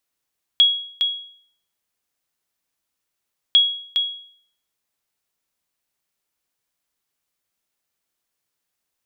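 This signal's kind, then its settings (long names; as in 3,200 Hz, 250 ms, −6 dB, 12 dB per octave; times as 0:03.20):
ping with an echo 3,320 Hz, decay 0.57 s, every 2.95 s, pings 2, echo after 0.41 s, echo −6.5 dB −7 dBFS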